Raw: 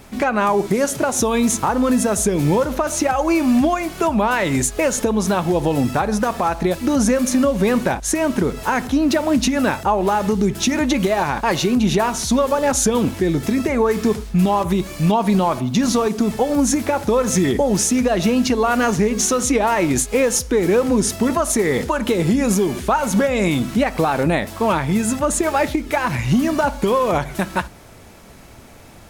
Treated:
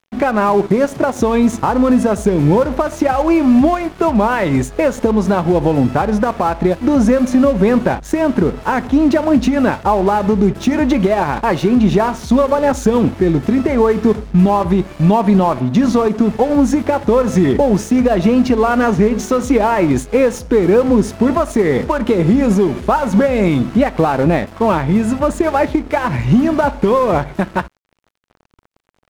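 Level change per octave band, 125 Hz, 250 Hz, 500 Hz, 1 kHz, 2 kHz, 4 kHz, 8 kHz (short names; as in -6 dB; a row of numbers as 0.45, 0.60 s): +5.0, +5.0, +4.5, +3.0, +0.5, -4.5, -11.0 dB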